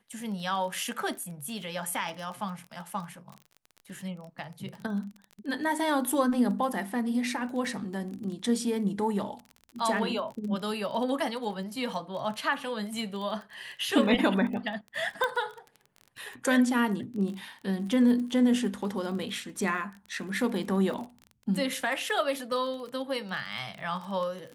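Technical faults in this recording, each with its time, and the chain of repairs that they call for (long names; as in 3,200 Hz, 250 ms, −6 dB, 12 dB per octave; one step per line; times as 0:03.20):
surface crackle 24 per second −36 dBFS
0:15.24: click −15 dBFS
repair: click removal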